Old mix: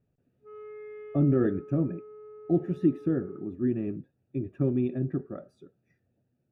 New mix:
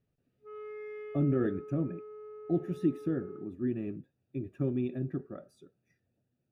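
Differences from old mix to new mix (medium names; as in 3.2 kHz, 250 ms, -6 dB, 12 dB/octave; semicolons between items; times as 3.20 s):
speech -5.0 dB; master: remove low-pass 1.8 kHz 6 dB/octave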